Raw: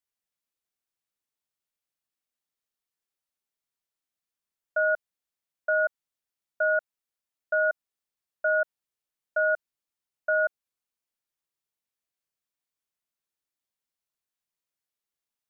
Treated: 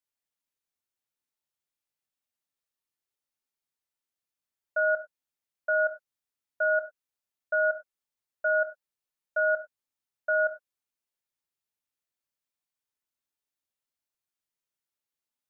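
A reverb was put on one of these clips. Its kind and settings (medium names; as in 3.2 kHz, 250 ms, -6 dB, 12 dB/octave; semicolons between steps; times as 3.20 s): gated-style reverb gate 130 ms falling, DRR 5.5 dB; trim -3 dB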